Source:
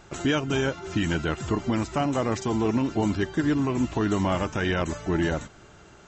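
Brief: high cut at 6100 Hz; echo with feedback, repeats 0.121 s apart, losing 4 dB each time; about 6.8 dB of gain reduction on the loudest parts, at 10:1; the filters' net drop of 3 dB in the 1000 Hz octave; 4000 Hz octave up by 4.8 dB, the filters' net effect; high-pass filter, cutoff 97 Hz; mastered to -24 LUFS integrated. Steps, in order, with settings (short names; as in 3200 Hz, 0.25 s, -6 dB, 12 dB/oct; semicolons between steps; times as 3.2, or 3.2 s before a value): HPF 97 Hz; LPF 6100 Hz; bell 1000 Hz -4.5 dB; bell 4000 Hz +8 dB; compressor 10:1, threshold -27 dBFS; feedback echo 0.121 s, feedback 63%, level -4 dB; gain +6.5 dB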